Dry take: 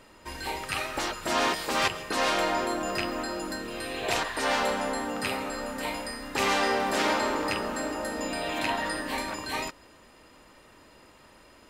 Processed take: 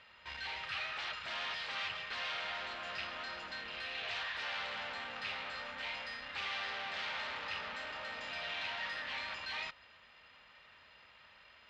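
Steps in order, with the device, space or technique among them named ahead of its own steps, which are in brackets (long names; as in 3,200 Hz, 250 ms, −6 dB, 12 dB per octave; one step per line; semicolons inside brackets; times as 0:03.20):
scooped metal amplifier (tube saturation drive 38 dB, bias 0.75; loudspeaker in its box 98–3,700 Hz, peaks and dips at 120 Hz −4 dB, 250 Hz +5 dB, 1,000 Hz −3 dB; guitar amp tone stack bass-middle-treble 10-0-10)
level +8 dB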